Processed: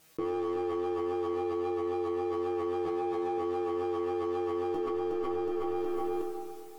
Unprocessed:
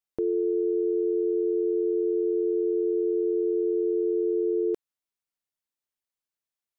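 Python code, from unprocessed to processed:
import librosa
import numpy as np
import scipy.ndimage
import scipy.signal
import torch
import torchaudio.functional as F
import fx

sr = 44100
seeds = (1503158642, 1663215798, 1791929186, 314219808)

y = fx.lower_of_two(x, sr, delay_ms=2.7, at=(2.85, 3.38))
y = fx.highpass(y, sr, hz=76.0, slope=6)
y = fx.low_shelf(y, sr, hz=480.0, db=8.5)
y = fx.vibrato(y, sr, rate_hz=3.7, depth_cents=25.0)
y = fx.air_absorb(y, sr, metres=300.0, at=(1.33, 2.3))
y = fx.clip_asym(y, sr, top_db=-21.5, bottom_db=-17.5)
y = fx.comb_fb(y, sr, f0_hz=160.0, decay_s=0.24, harmonics='all', damping=0.0, mix_pct=90)
y = fx.echo_feedback(y, sr, ms=367, feedback_pct=35, wet_db=-11.0)
y = fx.rev_freeverb(y, sr, rt60_s=2.2, hf_ratio=0.75, predelay_ms=25, drr_db=11.5)
y = fx.env_flatten(y, sr, amount_pct=100)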